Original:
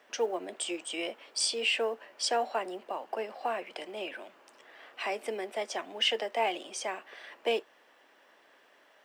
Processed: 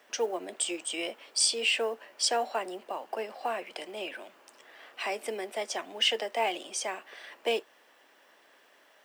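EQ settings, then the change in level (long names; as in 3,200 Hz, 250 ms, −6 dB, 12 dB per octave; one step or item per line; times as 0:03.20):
high-shelf EQ 5,300 Hz +8 dB
0.0 dB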